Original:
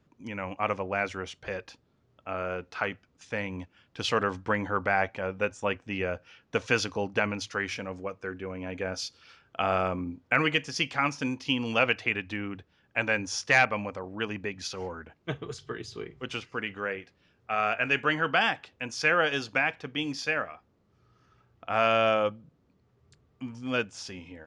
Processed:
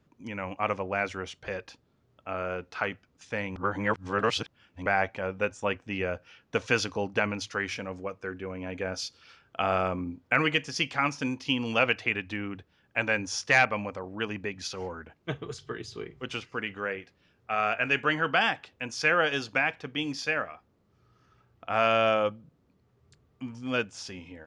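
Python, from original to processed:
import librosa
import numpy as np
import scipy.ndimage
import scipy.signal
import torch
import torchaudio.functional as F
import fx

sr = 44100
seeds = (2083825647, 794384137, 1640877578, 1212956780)

y = fx.edit(x, sr, fx.reverse_span(start_s=3.56, length_s=1.3), tone=tone)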